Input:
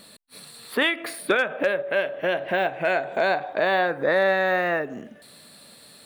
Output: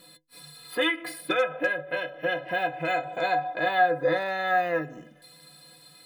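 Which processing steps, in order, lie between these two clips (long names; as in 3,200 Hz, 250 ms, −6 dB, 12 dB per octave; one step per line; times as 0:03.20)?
stiff-string resonator 150 Hz, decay 0.23 s, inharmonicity 0.03
level +7 dB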